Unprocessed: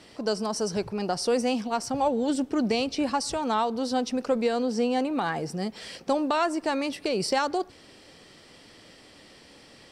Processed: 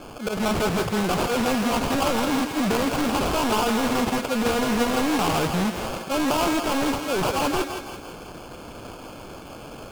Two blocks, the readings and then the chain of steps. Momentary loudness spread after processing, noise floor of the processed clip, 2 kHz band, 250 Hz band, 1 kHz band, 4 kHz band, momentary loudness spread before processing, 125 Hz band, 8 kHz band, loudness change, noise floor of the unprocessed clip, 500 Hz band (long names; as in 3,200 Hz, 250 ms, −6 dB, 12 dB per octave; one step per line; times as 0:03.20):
17 LU, −40 dBFS, +7.5 dB, +4.0 dB, +4.0 dB, +5.0 dB, 5 LU, +10.0 dB, +5.5 dB, +4.0 dB, −53 dBFS, +2.0 dB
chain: volume swells 135 ms
in parallel at −10.5 dB: sine wavefolder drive 16 dB, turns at −13.5 dBFS
on the sum: decimation without filtering 23×
feedback echo with a high-pass in the loop 165 ms, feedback 52%, high-pass 480 Hz, level −5.5 dB
highs frequency-modulated by the lows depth 0.34 ms